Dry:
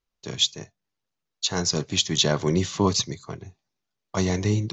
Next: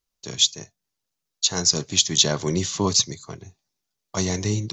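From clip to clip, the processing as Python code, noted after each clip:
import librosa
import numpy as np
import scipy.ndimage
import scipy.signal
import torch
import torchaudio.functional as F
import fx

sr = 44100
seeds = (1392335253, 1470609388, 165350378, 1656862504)

y = fx.bass_treble(x, sr, bass_db=0, treble_db=10)
y = y * librosa.db_to_amplitude(-1.5)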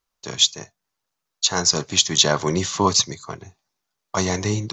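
y = fx.peak_eq(x, sr, hz=1100.0, db=9.5, octaves=2.0)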